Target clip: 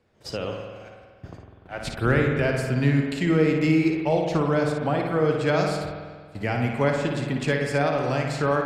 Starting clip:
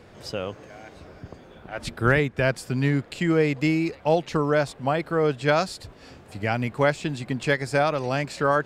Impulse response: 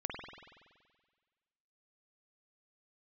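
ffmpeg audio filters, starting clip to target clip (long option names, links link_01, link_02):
-filter_complex "[0:a]agate=range=-18dB:threshold=-41dB:ratio=16:detection=peak,acrossover=split=470[link_01][link_02];[link_02]acompressor=threshold=-32dB:ratio=1.5[link_03];[link_01][link_03]amix=inputs=2:normalize=0,asplit=2[link_04][link_05];[1:a]atrim=start_sample=2205,lowpass=8400,adelay=57[link_06];[link_05][link_06]afir=irnorm=-1:irlink=0,volume=-3.5dB[link_07];[link_04][link_07]amix=inputs=2:normalize=0"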